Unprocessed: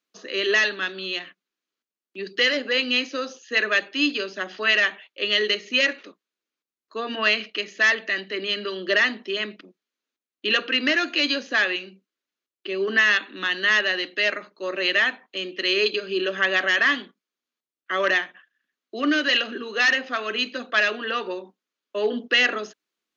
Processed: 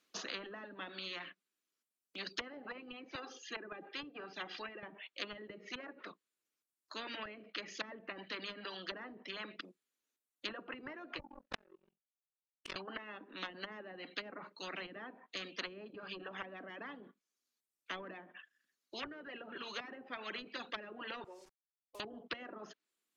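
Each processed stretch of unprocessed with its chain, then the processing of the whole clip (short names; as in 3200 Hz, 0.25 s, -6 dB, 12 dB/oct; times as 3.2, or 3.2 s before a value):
3.15–4.83 LPF 2100 Hz 6 dB/oct + comb 2.5 ms
11.19–12.76 treble ducked by the level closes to 320 Hz, closed at -20.5 dBFS + ring modulator 22 Hz + power-law curve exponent 2
21.24–22 ladder band-pass 580 Hz, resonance 25% + requantised 10-bit, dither none
whole clip: treble ducked by the level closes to 390 Hz, closed at -19.5 dBFS; reverb removal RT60 1.7 s; spectral compressor 4:1; gain -3.5 dB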